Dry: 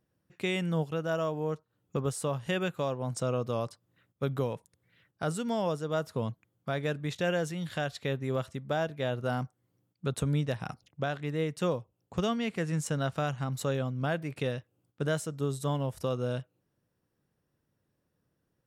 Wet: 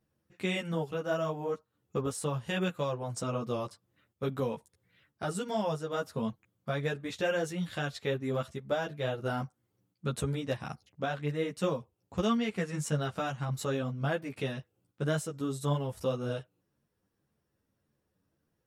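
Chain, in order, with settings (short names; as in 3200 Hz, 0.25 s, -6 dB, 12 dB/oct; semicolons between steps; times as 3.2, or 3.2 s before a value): ensemble effect; gain +2.5 dB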